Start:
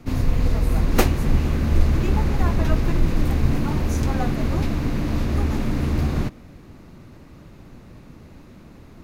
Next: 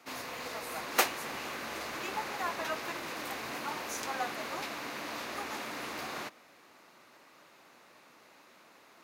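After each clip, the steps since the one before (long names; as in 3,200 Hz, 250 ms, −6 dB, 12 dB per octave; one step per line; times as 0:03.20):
high-pass filter 780 Hz 12 dB per octave
level −2 dB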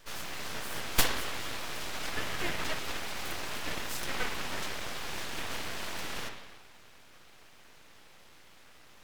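spring reverb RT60 1.3 s, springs 48/56 ms, chirp 60 ms, DRR 4.5 dB
full-wave rectification
level +3.5 dB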